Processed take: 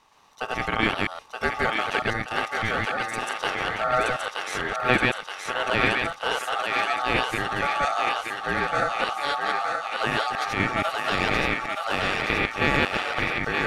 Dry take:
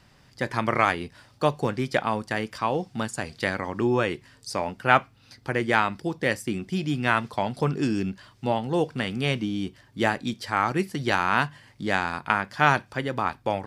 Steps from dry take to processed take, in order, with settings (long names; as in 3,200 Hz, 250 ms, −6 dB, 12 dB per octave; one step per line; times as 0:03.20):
delay that plays each chunk backwards 119 ms, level 0 dB
ring modulation 1,000 Hz
on a send: feedback echo with a high-pass in the loop 924 ms, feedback 66%, high-pass 610 Hz, level −3 dB
on the sum: level −1 dB